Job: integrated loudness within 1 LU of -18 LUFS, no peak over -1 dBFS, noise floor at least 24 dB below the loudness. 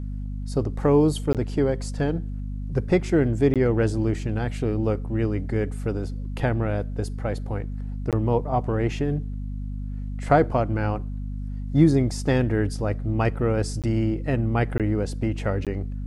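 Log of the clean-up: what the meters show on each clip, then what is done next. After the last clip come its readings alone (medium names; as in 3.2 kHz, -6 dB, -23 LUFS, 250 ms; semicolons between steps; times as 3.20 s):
dropouts 6; longest dropout 17 ms; hum 50 Hz; highest harmonic 250 Hz; hum level -28 dBFS; loudness -25.0 LUFS; peak level -5.5 dBFS; loudness target -18.0 LUFS
-> interpolate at 1.33/3.54/8.11/13.82/14.78/15.65 s, 17 ms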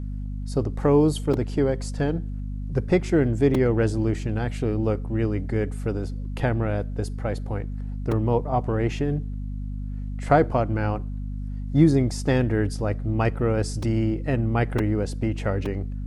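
dropouts 0; hum 50 Hz; highest harmonic 250 Hz; hum level -28 dBFS
-> hum notches 50/100/150/200/250 Hz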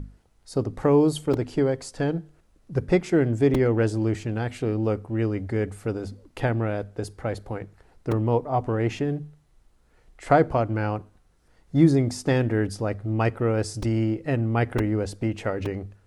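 hum not found; loudness -25.0 LUFS; peak level -5.5 dBFS; loudness target -18.0 LUFS
-> trim +7 dB; peak limiter -1 dBFS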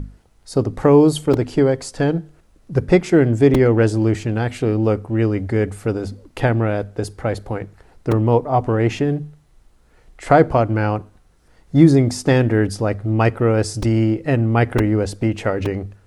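loudness -18.0 LUFS; peak level -1.0 dBFS; noise floor -54 dBFS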